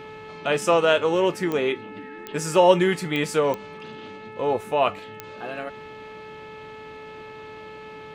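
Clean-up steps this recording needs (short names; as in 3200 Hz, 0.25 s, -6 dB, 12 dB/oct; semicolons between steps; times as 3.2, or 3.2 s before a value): de-click; de-hum 433.5 Hz, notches 6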